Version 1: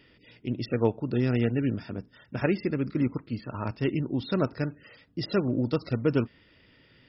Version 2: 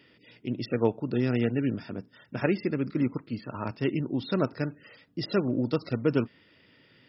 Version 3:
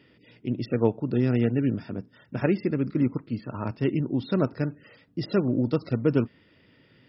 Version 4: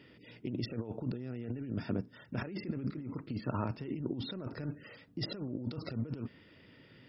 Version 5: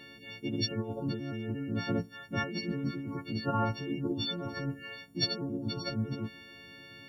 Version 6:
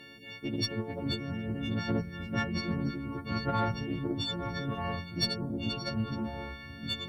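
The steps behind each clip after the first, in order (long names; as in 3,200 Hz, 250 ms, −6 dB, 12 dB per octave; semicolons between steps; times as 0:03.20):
high-pass filter 120 Hz 12 dB per octave
spectral tilt −1.5 dB per octave
compressor whose output falls as the input rises −32 dBFS, ratio −1; level −6 dB
every partial snapped to a pitch grid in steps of 4 semitones; level +4 dB
harmonic generator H 6 −27 dB, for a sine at −15.5 dBFS; delay with pitch and tempo change per echo 322 ms, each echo −4 semitones, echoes 3, each echo −6 dB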